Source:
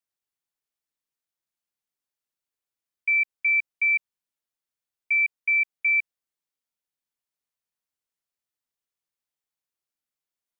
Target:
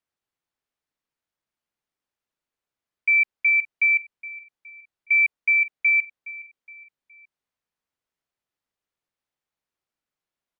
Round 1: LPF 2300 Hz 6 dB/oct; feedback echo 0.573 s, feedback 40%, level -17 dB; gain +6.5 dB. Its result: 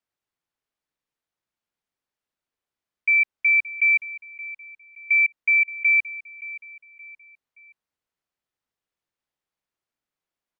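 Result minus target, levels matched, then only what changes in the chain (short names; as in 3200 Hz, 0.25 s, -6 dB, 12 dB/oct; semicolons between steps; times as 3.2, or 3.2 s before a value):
echo 0.156 s late
change: feedback echo 0.417 s, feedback 40%, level -17 dB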